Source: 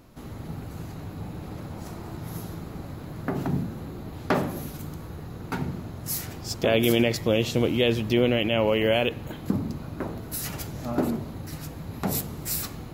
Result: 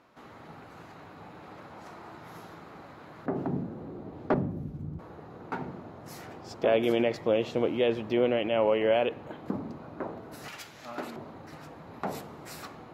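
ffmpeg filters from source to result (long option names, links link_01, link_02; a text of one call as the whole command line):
ffmpeg -i in.wav -af "asetnsamples=nb_out_samples=441:pad=0,asendcmd='3.26 bandpass f 460;4.34 bandpass f 140;4.99 bandpass f 740;10.48 bandpass f 2300;11.16 bandpass f 900',bandpass=frequency=1300:width_type=q:width=0.73:csg=0" out.wav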